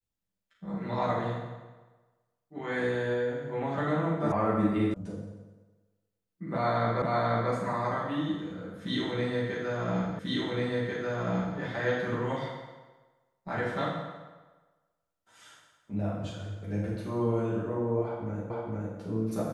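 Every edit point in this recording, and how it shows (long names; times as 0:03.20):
0:04.32: cut off before it has died away
0:04.94: cut off before it has died away
0:07.02: the same again, the last 0.49 s
0:10.19: the same again, the last 1.39 s
0:18.50: the same again, the last 0.46 s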